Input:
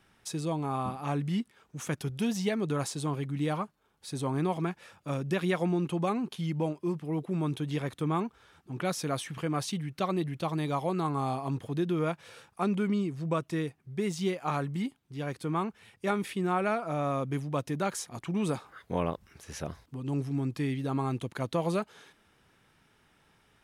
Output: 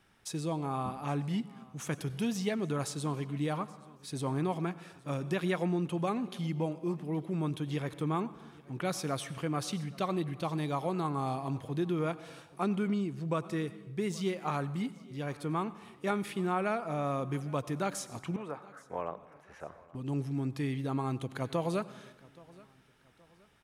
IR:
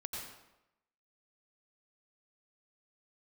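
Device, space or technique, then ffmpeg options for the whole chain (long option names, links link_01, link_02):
compressed reverb return: -filter_complex "[0:a]asplit=2[link_01][link_02];[1:a]atrim=start_sample=2205[link_03];[link_02][link_03]afir=irnorm=-1:irlink=0,acompressor=threshold=-31dB:ratio=6,volume=-10dB[link_04];[link_01][link_04]amix=inputs=2:normalize=0,asettb=1/sr,asplit=3[link_05][link_06][link_07];[link_05]atrim=end=18.364[link_08];[link_06]atrim=start=18.36:end=19.95,asetpts=PTS-STARTPTS,afade=type=in:duration=0.004:curve=qsin,afade=type=out:start_time=1.586:duration=0.004:curve=qsin,acrossover=split=460 2100:gain=0.178 1 0.0708[link_09][link_10][link_11];[link_09][link_10][link_11]amix=inputs=3:normalize=0[link_12];[link_07]atrim=start=19.946[link_13];[link_08][link_12]acrossfade=duration=0.004:curve1=hsin:curve2=qsin[link_14];[link_14][link_13]acrossfade=duration=0.004:curve1=qsin:curve2=hsin,aecho=1:1:824|1648:0.0708|0.0262,volume=-3.5dB"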